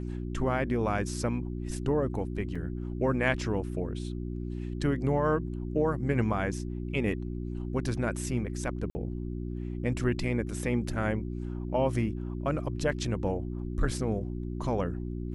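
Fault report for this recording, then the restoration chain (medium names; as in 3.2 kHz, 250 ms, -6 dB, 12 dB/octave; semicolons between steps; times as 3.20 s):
hum 60 Hz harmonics 6 -35 dBFS
2.55–2.56 s: dropout 5 ms
8.90–8.95 s: dropout 50 ms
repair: de-hum 60 Hz, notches 6; interpolate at 2.55 s, 5 ms; interpolate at 8.90 s, 50 ms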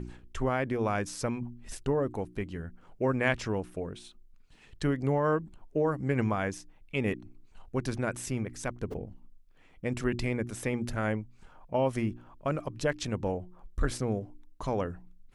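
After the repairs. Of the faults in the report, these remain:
nothing left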